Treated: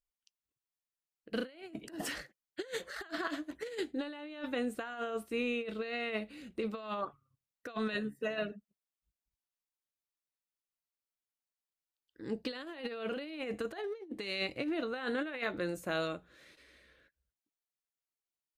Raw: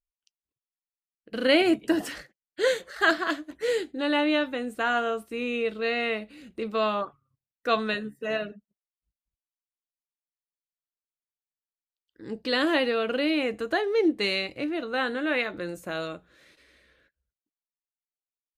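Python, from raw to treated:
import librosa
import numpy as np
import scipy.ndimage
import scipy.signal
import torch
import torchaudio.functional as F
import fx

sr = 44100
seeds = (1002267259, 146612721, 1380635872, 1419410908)

y = fx.over_compress(x, sr, threshold_db=-30.0, ratio=-0.5)
y = y * 10.0 ** (-6.5 / 20.0)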